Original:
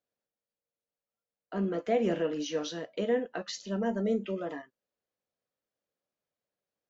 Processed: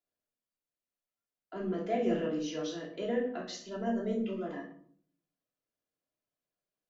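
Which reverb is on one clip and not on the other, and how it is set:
rectangular room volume 720 cubic metres, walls furnished, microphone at 3.1 metres
level −7.5 dB

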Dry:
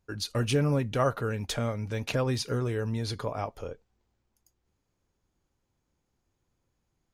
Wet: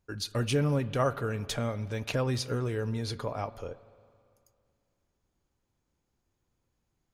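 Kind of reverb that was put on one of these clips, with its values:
spring reverb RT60 2.3 s, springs 39/55 ms, chirp 65 ms, DRR 17 dB
level −1.5 dB

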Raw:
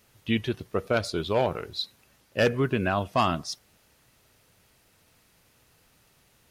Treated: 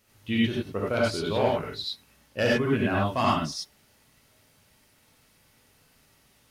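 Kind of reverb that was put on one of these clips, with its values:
reverb whose tail is shaped and stops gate 120 ms rising, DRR −4.5 dB
level −5 dB

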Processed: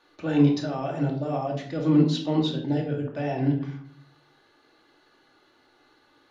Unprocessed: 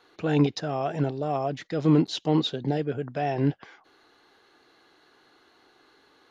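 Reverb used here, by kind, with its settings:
rectangular room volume 770 cubic metres, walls furnished, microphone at 2.5 metres
level −4.5 dB

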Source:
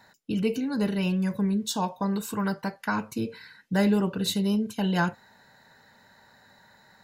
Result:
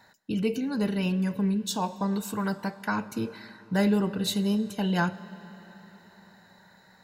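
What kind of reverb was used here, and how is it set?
comb and all-pass reverb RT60 4.6 s, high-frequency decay 0.75×, pre-delay 45 ms, DRR 16.5 dB
level −1 dB

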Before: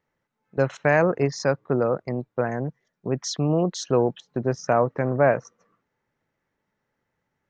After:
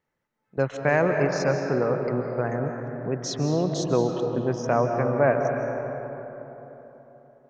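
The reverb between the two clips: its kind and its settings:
comb and all-pass reverb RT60 3.8 s, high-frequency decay 0.45×, pre-delay 115 ms, DRR 3.5 dB
level −2.5 dB

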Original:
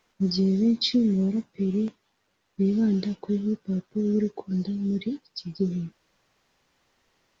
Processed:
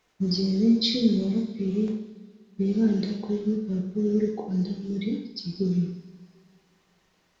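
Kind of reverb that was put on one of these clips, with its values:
coupled-rooms reverb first 0.74 s, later 2.4 s, from −17 dB, DRR 0.5 dB
level −1.5 dB

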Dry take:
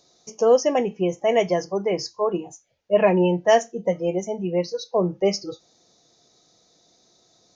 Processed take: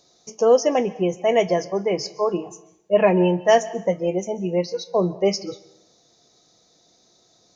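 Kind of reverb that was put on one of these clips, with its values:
dense smooth reverb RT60 0.74 s, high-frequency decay 0.8×, pre-delay 120 ms, DRR 18 dB
level +1 dB

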